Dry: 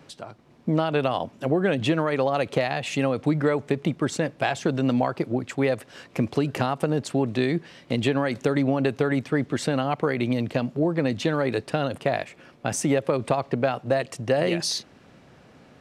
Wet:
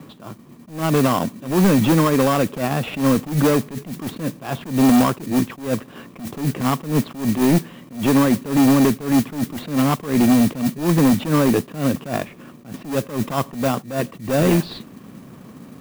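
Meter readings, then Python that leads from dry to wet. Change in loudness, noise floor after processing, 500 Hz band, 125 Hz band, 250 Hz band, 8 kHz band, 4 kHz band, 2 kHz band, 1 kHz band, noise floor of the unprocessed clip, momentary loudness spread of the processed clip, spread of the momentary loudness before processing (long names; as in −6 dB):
+6.0 dB, −44 dBFS, +1.0 dB, +6.0 dB, +8.0 dB, +6.0 dB, +2.5 dB, +1.0 dB, +4.5 dB, −54 dBFS, 13 LU, 5 LU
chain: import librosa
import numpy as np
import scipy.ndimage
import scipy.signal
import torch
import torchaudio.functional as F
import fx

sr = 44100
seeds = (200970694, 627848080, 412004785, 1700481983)

p1 = scipy.signal.sosfilt(scipy.signal.butter(8, 3900.0, 'lowpass', fs=sr, output='sos'), x)
p2 = fx.small_body(p1, sr, hz=(210.0, 1100.0), ring_ms=20, db=13)
p3 = fx.sample_hold(p2, sr, seeds[0], rate_hz=2100.0, jitter_pct=0)
p4 = p2 + F.gain(torch.from_numpy(p3), -5.5).numpy()
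p5 = fx.mod_noise(p4, sr, seeds[1], snr_db=18)
p6 = np.clip(p5, -10.0 ** (-11.0 / 20.0), 10.0 ** (-11.0 / 20.0))
y = fx.attack_slew(p6, sr, db_per_s=140.0)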